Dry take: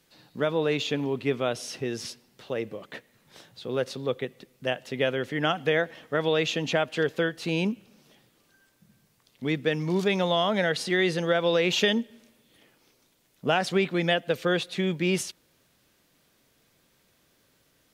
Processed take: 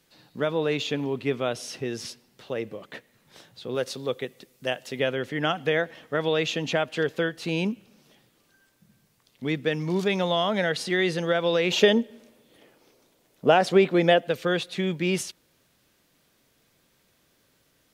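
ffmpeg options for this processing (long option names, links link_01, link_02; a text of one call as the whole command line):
ffmpeg -i in.wav -filter_complex "[0:a]asettb=1/sr,asplit=3[link_01][link_02][link_03];[link_01]atrim=end=3.754[link_04];[link_02]atrim=start=3.75:end=5,asetpts=PTS-STARTPTS,afade=type=in:duration=0.004:curve=qsin,afade=type=out:start_time=1.246:duration=0.004:curve=qsin,bass=frequency=250:gain=-3,treble=frequency=4000:gain=6[link_05];[link_03]atrim=start=4.996[link_06];[link_04][link_05]acrossfade=duration=0.004:curve1=hsin:curve2=qsin[link_07];[link_07][link_06]acrossfade=duration=0.004:curve1=qsin:curve2=hsin,asettb=1/sr,asplit=3[link_08][link_09][link_10];[link_08]atrim=end=11.714[link_11];[link_09]atrim=start=11.71:end=14.27,asetpts=PTS-STARTPTS,afade=type=in:duration=0.004:curve=qsin,afade=type=out:start_time=2.556:duration=0.004:curve=qsin,equalizer=frequency=510:width_type=o:width=2:gain=8[link_12];[link_10]atrim=start=14.266[link_13];[link_11][link_12]acrossfade=duration=0.004:curve1=hsin:curve2=qsin[link_14];[link_14][link_13]acrossfade=duration=0.004:curve1=qsin:curve2=hsin" out.wav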